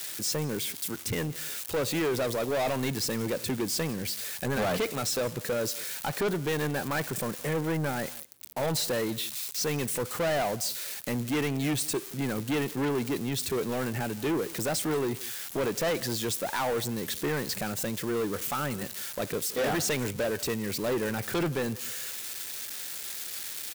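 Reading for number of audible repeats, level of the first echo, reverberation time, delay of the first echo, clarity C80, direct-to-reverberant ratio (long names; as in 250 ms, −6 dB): 1, −21.5 dB, no reverb audible, 170 ms, no reverb audible, no reverb audible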